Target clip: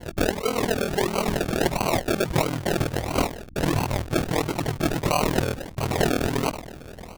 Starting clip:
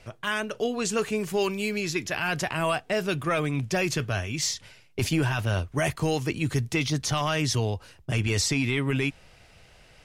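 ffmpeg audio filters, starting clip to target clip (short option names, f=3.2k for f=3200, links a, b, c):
-af "aeval=exprs='val(0)+0.5*0.0376*sgn(val(0))':c=same,agate=range=-33dB:threshold=-29dB:ratio=3:detection=peak,lowshelf=f=400:g=-10,atempo=1.4,acrusher=samples=35:mix=1:aa=0.000001:lfo=1:lforange=21:lforate=1.5,aeval=exprs='val(0)+0.00316*(sin(2*PI*60*n/s)+sin(2*PI*2*60*n/s)/2+sin(2*PI*3*60*n/s)/3+sin(2*PI*4*60*n/s)/4+sin(2*PI*5*60*n/s)/5)':c=same,aeval=exprs='val(0)*sin(2*PI*20*n/s)':c=same,volume=7.5dB"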